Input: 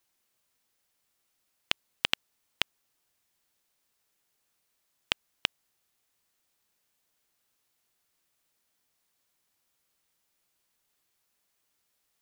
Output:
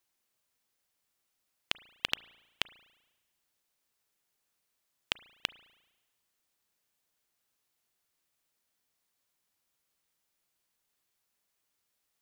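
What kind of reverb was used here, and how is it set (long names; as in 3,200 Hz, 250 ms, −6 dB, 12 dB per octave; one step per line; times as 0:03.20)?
spring reverb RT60 1.1 s, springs 35 ms, chirp 35 ms, DRR 19 dB
level −4 dB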